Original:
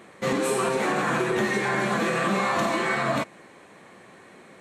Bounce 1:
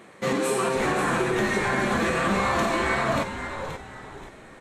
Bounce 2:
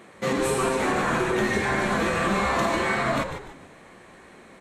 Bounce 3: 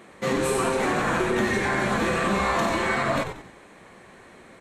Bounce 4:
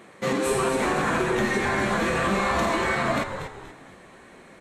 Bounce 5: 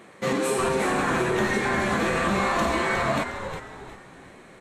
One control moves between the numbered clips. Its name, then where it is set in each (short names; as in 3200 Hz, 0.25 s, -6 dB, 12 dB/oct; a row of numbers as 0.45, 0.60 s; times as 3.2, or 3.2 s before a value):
frequency-shifting echo, time: 529, 148, 92, 239, 360 ms